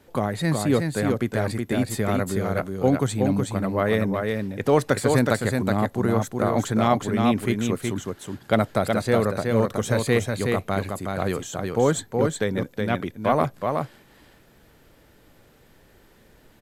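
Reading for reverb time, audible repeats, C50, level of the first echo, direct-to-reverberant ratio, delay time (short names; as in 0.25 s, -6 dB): none, 1, none, -4.0 dB, none, 0.37 s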